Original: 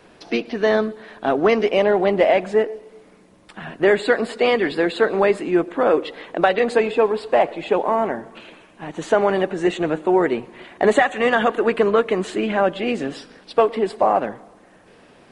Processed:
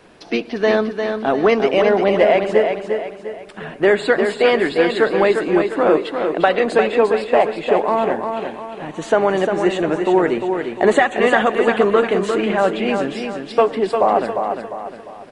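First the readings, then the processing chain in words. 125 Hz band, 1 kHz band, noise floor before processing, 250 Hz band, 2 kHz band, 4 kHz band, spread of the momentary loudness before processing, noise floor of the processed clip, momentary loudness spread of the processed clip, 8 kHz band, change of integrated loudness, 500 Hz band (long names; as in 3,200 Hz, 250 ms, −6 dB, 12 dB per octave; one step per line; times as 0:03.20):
+2.5 dB, +2.5 dB, −51 dBFS, +2.5 dB, +2.5 dB, +2.5 dB, 10 LU, −37 dBFS, 11 LU, can't be measured, +2.5 dB, +2.5 dB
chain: repeating echo 351 ms, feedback 41%, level −6 dB
level +1.5 dB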